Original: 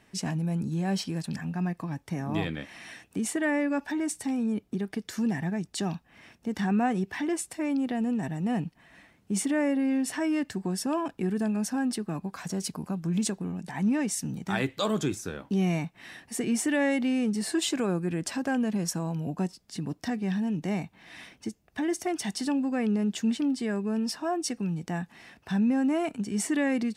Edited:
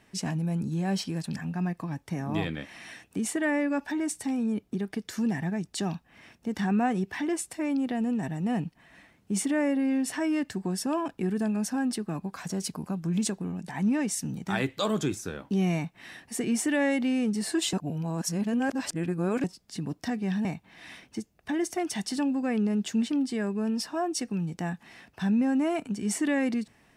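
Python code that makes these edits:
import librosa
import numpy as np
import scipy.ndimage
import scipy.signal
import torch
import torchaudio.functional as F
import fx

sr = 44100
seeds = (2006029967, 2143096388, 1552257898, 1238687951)

y = fx.edit(x, sr, fx.reverse_span(start_s=17.73, length_s=1.71),
    fx.cut(start_s=20.45, length_s=0.29), tone=tone)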